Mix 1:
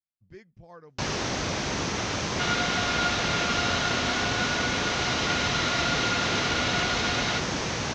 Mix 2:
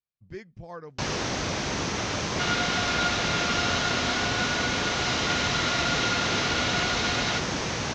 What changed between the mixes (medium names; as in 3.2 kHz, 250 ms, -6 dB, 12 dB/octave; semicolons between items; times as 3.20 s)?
speech +7.5 dB; second sound: remove low-pass 5.8 kHz